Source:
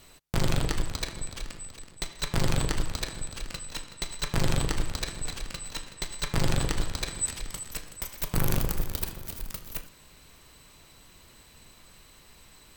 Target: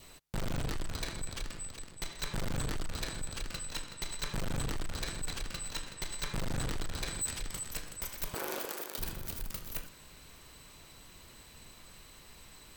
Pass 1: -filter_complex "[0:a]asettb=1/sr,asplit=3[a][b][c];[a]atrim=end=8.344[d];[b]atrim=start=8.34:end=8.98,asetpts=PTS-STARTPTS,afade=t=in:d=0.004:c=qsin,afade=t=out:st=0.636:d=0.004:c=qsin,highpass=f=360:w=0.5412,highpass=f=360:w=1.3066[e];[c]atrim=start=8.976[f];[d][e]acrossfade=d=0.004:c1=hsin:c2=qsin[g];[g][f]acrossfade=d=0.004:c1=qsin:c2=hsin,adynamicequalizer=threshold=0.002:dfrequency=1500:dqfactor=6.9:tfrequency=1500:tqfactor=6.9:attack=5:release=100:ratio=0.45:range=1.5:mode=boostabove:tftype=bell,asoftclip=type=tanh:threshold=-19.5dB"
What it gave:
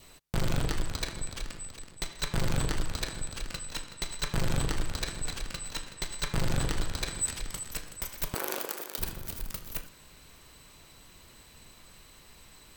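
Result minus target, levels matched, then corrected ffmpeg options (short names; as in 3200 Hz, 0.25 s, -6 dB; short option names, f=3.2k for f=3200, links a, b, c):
soft clip: distortion -9 dB
-filter_complex "[0:a]asettb=1/sr,asplit=3[a][b][c];[a]atrim=end=8.344[d];[b]atrim=start=8.34:end=8.98,asetpts=PTS-STARTPTS,afade=t=in:d=0.004:c=qsin,afade=t=out:st=0.636:d=0.004:c=qsin,highpass=f=360:w=0.5412,highpass=f=360:w=1.3066[e];[c]atrim=start=8.976[f];[d][e]acrossfade=d=0.004:c1=hsin:c2=qsin[g];[g][f]acrossfade=d=0.004:c1=qsin:c2=hsin,adynamicequalizer=threshold=0.002:dfrequency=1500:dqfactor=6.9:tfrequency=1500:tqfactor=6.9:attack=5:release=100:ratio=0.45:range=1.5:mode=boostabove:tftype=bell,asoftclip=type=tanh:threshold=-30dB"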